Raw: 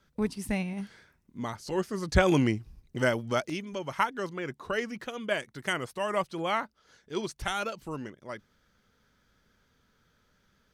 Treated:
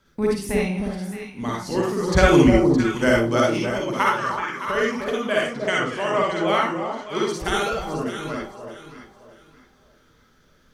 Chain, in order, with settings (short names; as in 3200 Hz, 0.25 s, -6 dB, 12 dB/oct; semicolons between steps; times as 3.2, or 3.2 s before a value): 4.05–4.68 resonant low shelf 770 Hz -12 dB, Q 3; 5.44–6.48 LPF 7300 Hz 24 dB/oct; echo with dull and thin repeats by turns 0.308 s, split 950 Hz, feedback 52%, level -4 dB; reverb RT60 0.30 s, pre-delay 42 ms, DRR -3 dB; gain +3.5 dB